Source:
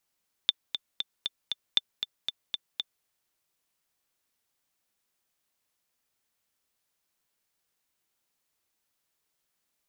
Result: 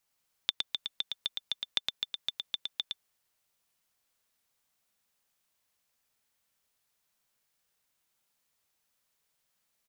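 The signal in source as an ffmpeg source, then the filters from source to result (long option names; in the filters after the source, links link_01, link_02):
-f lavfi -i "aevalsrc='pow(10,(-8-8.5*gte(mod(t,5*60/234),60/234))/20)*sin(2*PI*3550*mod(t,60/234))*exp(-6.91*mod(t,60/234)/0.03)':duration=2.56:sample_rate=44100"
-af "equalizer=frequency=330:width=3.5:gain=-6.5,acompressor=threshold=-26dB:ratio=6,aecho=1:1:113:0.631"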